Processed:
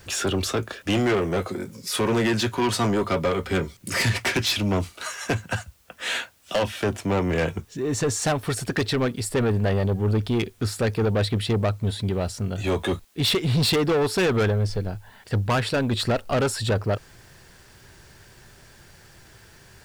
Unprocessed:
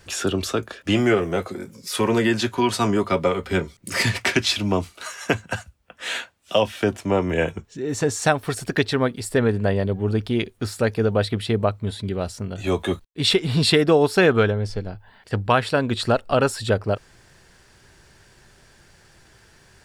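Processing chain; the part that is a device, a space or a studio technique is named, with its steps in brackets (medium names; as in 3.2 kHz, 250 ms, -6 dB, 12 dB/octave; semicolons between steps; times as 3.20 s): open-reel tape (saturation -20 dBFS, distortion -8 dB; peaking EQ 110 Hz +3 dB 0.84 oct; white noise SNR 37 dB); trim +2 dB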